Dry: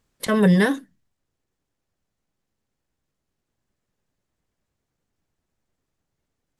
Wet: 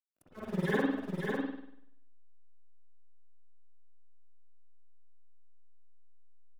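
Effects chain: reverse; compression 16:1, threshold -24 dBFS, peak gain reduction 12.5 dB; reverse; slow attack 729 ms; tremolo 19 Hz, depth 81%; transient shaper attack +7 dB, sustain 0 dB; phase dispersion lows, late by 70 ms, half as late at 2.4 kHz; in parallel at -8.5 dB: decimation with a swept rate 34×, swing 60% 0.71 Hz; on the sum: hysteresis with a dead band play -47 dBFS; harmony voices +12 st -17 dB; delay 550 ms -4.5 dB; reverberation RT60 0.70 s, pre-delay 48 ms, DRR -7 dB; trim -5 dB

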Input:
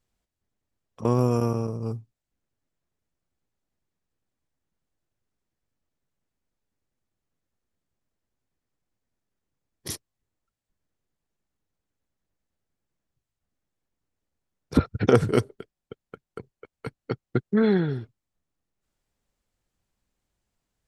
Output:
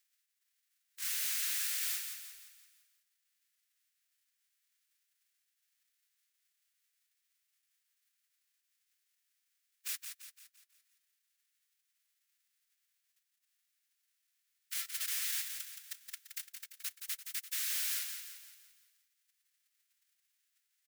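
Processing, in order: formants flattened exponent 0.1; in parallel at +1.5 dB: compression 4:1, threshold -31 dBFS, peak gain reduction 16.5 dB; on the sum: peak limiter -7.5 dBFS, peak gain reduction 9.5 dB; integer overflow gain 22.5 dB; Chebyshev high-pass 1.7 kHz, order 3; on a send: feedback delay 171 ms, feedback 48%, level -7 dB; on the sum: trim -8 dB

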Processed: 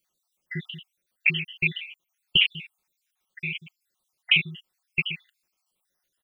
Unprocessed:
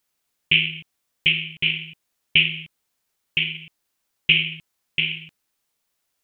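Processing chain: random holes in the spectrogram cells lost 61%; comb 5.5 ms, depth 48%

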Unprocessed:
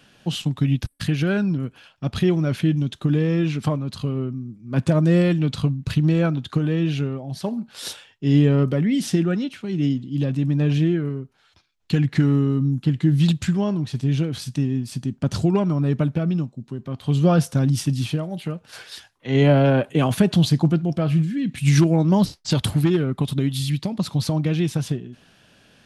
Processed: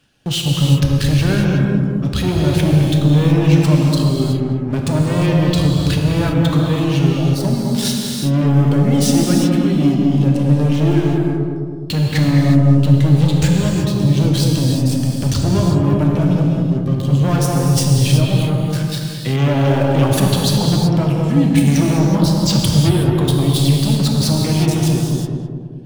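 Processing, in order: median filter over 3 samples; bass shelf 200 Hz +7.5 dB; waveshaping leveller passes 3; reverb removal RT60 1.3 s; peak limiter -11.5 dBFS, peak gain reduction 8.5 dB; treble shelf 4 kHz +7 dB; filtered feedback delay 209 ms, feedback 59%, low-pass 940 Hz, level -3 dB; gated-style reverb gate 400 ms flat, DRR -0.5 dB; trim -3.5 dB

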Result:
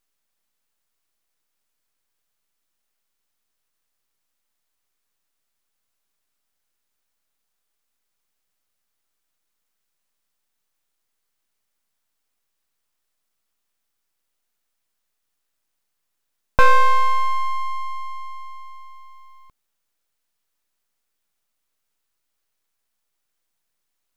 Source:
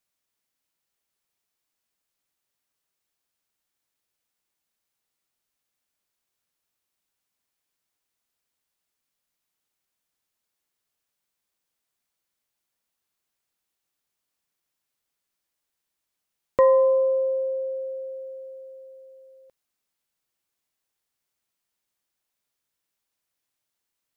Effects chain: full-wave rectifier; peaking EQ 1.3 kHz +2 dB; trim +6.5 dB

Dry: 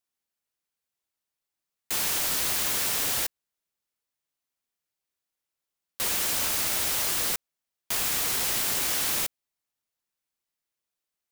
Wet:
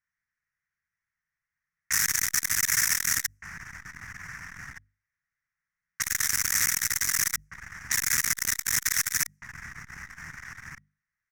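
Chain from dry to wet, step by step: hum notches 50/100/150/200/250 Hz; level-controlled noise filter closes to 2.2 kHz, open at -28 dBFS; FFT filter 160 Hz 0 dB, 330 Hz -26 dB, 550 Hz -28 dB, 1.9 kHz +9 dB, 3.7 kHz -27 dB, 5.7 kHz +7 dB, 8.6 kHz -2 dB; echo from a far wall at 260 m, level -6 dB; transformer saturation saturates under 3.4 kHz; trim +8 dB

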